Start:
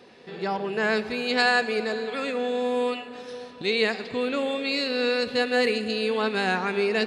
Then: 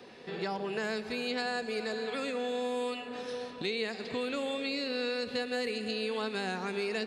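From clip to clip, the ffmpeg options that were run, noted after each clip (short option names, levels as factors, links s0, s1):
-filter_complex "[0:a]acrossover=split=120|630|4300[s0][s1][s2][s3];[s0]acompressor=threshold=0.00126:ratio=4[s4];[s1]acompressor=threshold=0.0158:ratio=4[s5];[s2]acompressor=threshold=0.0112:ratio=4[s6];[s3]acompressor=threshold=0.00631:ratio=4[s7];[s4][s5][s6][s7]amix=inputs=4:normalize=0"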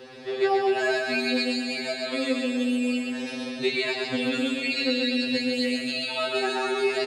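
-af "aecho=1:1:130|247|352.3|447.1|532.4:0.631|0.398|0.251|0.158|0.1,afftfilt=real='re*2.45*eq(mod(b,6),0)':imag='im*2.45*eq(mod(b,6),0)':win_size=2048:overlap=0.75,volume=2.82"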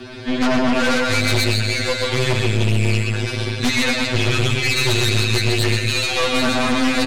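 -af "afreqshift=-140,aeval=exprs='0.237*(cos(1*acos(clip(val(0)/0.237,-1,1)))-cos(1*PI/2))+0.0944*(cos(5*acos(clip(val(0)/0.237,-1,1)))-cos(5*PI/2))+0.075*(cos(8*acos(clip(val(0)/0.237,-1,1)))-cos(8*PI/2))':c=same"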